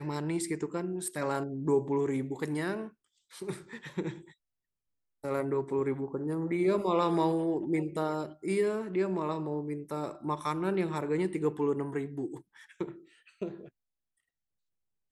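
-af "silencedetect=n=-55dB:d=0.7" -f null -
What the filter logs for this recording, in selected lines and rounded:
silence_start: 4.33
silence_end: 5.23 | silence_duration: 0.91
silence_start: 13.69
silence_end: 15.11 | silence_duration: 1.43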